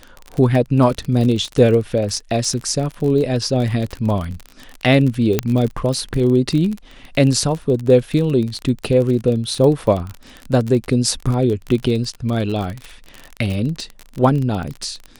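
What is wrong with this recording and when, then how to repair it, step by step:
crackle 35 per s -22 dBFS
5.39 s: pop -2 dBFS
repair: de-click

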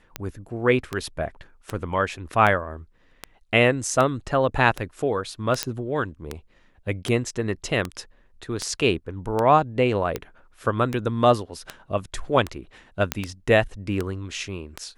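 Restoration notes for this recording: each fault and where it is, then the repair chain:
tick 78 rpm -12 dBFS
5.63 s: pop -6 dBFS
13.12 s: pop -5 dBFS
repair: de-click

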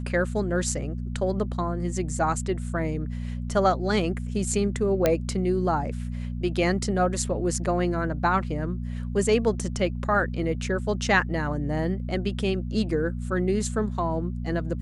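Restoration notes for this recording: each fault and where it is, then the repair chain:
hum 60 Hz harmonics 4 -31 dBFS
5.06 s: pop -7 dBFS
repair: de-click; de-hum 60 Hz, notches 4

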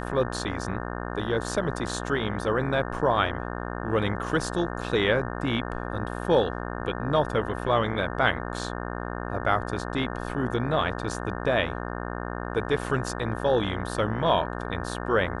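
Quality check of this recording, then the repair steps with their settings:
buzz 60 Hz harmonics 30 -33 dBFS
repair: de-hum 60 Hz, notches 30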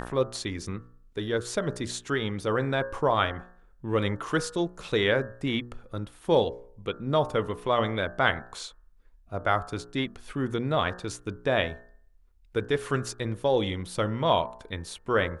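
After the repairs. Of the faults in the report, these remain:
nothing left

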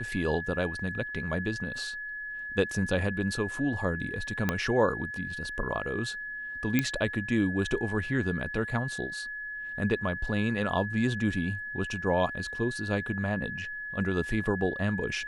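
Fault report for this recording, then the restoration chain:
whine 1.7 kHz -35 dBFS
4.49 s: pop -12 dBFS
6.79 s: pop -10 dBFS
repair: de-click; band-stop 1.7 kHz, Q 30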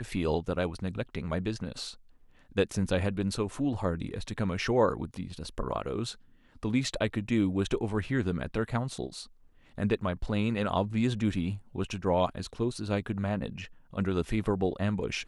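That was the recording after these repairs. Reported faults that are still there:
4.49 s: pop

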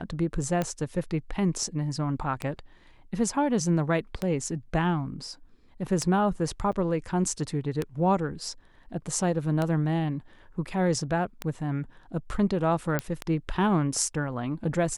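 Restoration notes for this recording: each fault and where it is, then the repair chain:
tick 33 1/3 rpm -14 dBFS
6.72–6.73 s: dropout 6.7 ms
12.99 s: pop -12 dBFS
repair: de-click; interpolate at 6.72 s, 6.7 ms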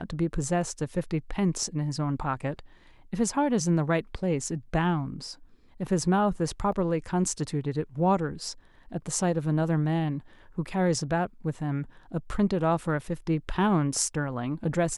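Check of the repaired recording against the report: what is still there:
nothing left

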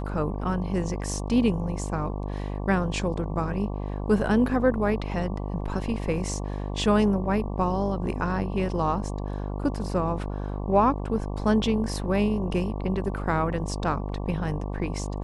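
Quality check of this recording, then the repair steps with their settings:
buzz 50 Hz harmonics 23 -31 dBFS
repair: de-hum 50 Hz, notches 23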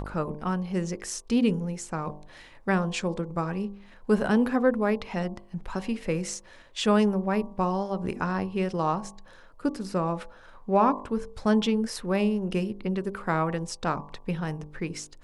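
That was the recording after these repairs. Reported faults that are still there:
nothing left

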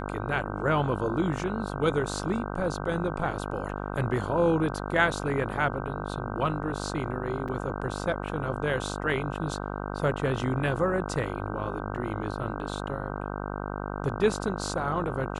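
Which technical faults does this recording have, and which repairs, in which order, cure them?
buzz 50 Hz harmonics 31 -34 dBFS
7.48–7.49 s: dropout 5.4 ms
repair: de-hum 50 Hz, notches 31; interpolate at 7.48 s, 5.4 ms

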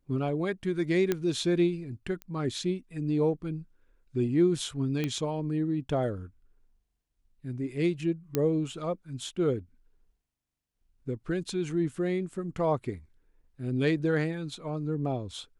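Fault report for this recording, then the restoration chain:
1.12 s: pop -13 dBFS
2.22 s: pop -25 dBFS
5.04 s: pop -17 dBFS
8.35 s: pop -13 dBFS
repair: de-click

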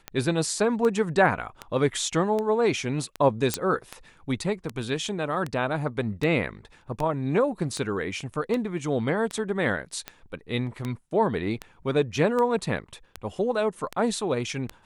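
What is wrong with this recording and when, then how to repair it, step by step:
tick 78 rpm -16 dBFS
3.54 s: pop -7 dBFS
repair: de-click

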